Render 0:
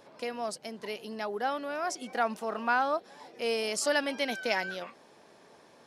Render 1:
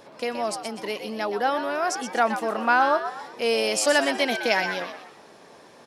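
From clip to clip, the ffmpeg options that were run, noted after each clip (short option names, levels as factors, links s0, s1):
-filter_complex "[0:a]asplit=5[s0][s1][s2][s3][s4];[s1]adelay=123,afreqshift=96,volume=0.355[s5];[s2]adelay=246,afreqshift=192,volume=0.138[s6];[s3]adelay=369,afreqshift=288,volume=0.0537[s7];[s4]adelay=492,afreqshift=384,volume=0.0211[s8];[s0][s5][s6][s7][s8]amix=inputs=5:normalize=0,volume=2.24"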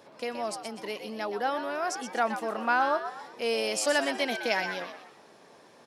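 -af "highpass=70,volume=0.531"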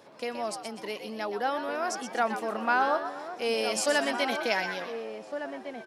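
-filter_complex "[0:a]asplit=2[s0][s1];[s1]adelay=1458,volume=0.447,highshelf=f=4000:g=-32.8[s2];[s0][s2]amix=inputs=2:normalize=0"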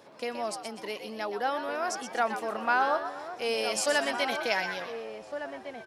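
-af "asubboost=boost=10.5:cutoff=73"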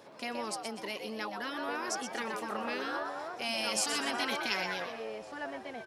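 -af "afftfilt=real='re*lt(hypot(re,im),0.141)':imag='im*lt(hypot(re,im),0.141)':win_size=1024:overlap=0.75"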